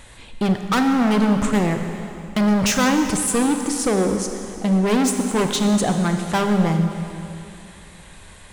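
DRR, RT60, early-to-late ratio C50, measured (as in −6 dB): 5.5 dB, 2.9 s, 6.0 dB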